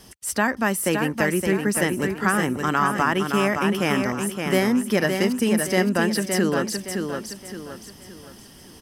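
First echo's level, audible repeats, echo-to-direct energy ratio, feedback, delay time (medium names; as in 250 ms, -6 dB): -5.5 dB, 4, -5.0 dB, 38%, 567 ms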